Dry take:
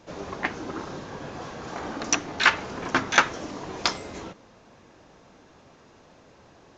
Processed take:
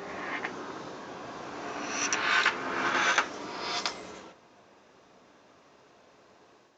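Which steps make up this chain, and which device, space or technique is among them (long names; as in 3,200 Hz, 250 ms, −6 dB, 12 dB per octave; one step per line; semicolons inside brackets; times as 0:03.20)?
ghost voice (reversed playback; convolution reverb RT60 1.8 s, pre-delay 70 ms, DRR −3.5 dB; reversed playback; high-pass filter 410 Hz 6 dB per octave)
level −7.5 dB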